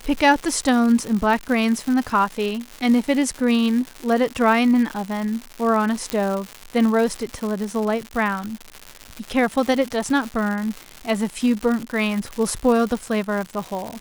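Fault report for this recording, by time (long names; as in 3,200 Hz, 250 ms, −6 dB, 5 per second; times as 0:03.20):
surface crackle 240 per second −25 dBFS
0:06.10: click −8 dBFS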